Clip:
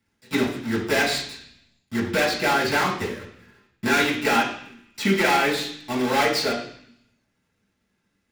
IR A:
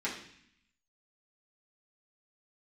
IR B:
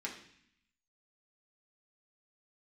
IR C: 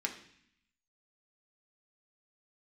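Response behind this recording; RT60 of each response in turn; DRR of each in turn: A; 0.60, 0.60, 0.60 seconds; −8.0, −3.0, 1.5 decibels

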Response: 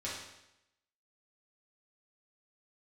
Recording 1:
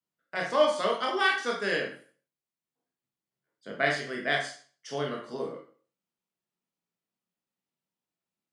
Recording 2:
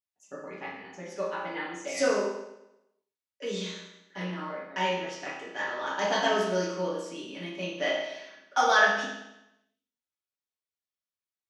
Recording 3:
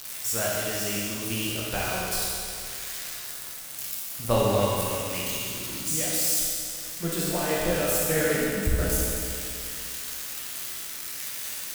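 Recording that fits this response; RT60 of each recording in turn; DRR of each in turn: 2; 0.40, 0.85, 2.5 seconds; −1.0, −8.0, −5.5 decibels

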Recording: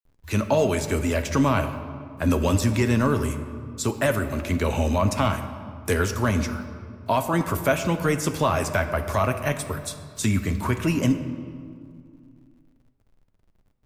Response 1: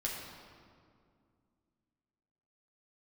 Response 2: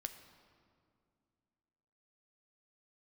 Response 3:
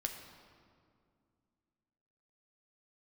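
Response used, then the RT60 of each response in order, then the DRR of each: 2; 2.2, 2.3, 2.2 seconds; −4.0, 7.5, 3.0 decibels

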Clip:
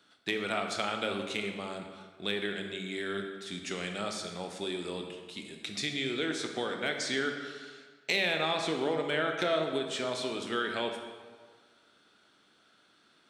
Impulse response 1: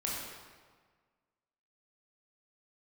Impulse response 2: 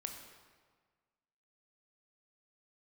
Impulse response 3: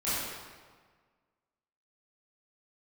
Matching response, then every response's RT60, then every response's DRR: 2; 1.6, 1.6, 1.6 seconds; −4.5, 3.5, −13.0 decibels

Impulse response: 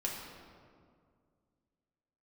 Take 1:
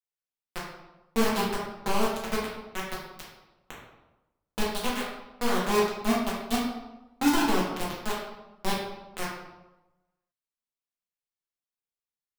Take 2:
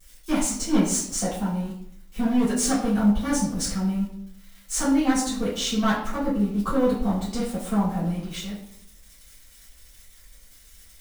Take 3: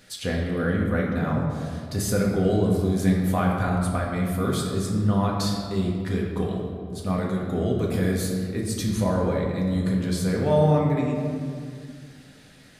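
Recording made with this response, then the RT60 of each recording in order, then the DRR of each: 3; 1.0, 0.65, 2.1 seconds; −6.0, −11.5, −3.0 decibels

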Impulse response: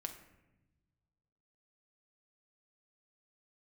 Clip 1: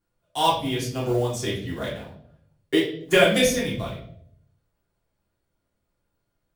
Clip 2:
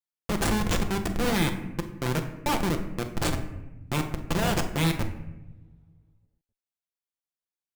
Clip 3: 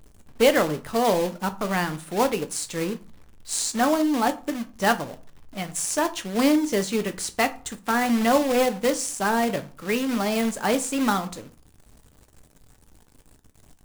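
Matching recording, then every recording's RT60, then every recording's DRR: 2; 0.65, 1.0, 0.40 seconds; −7.0, 4.5, 8.5 decibels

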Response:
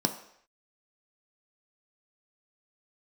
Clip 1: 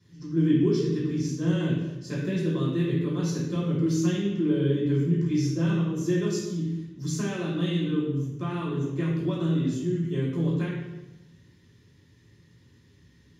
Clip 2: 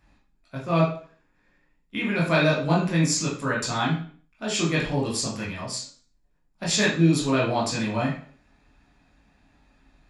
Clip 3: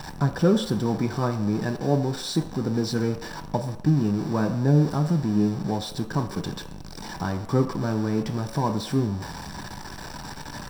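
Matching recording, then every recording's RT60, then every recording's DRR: 3; 1.0 s, 0.50 s, non-exponential decay; −9.5, −5.5, 5.0 decibels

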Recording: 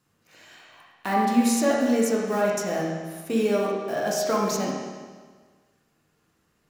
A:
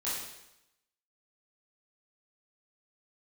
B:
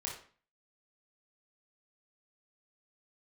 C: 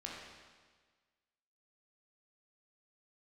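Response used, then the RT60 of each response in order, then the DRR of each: C; 0.85, 0.40, 1.5 seconds; −10.0, −3.0, −3.5 decibels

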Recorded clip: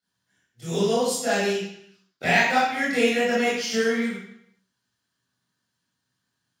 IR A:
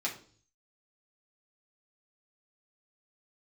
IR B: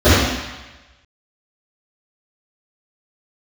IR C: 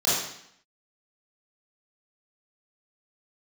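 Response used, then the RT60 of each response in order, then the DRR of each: C; 0.45, 1.1, 0.70 seconds; −4.0, −18.5, −11.0 decibels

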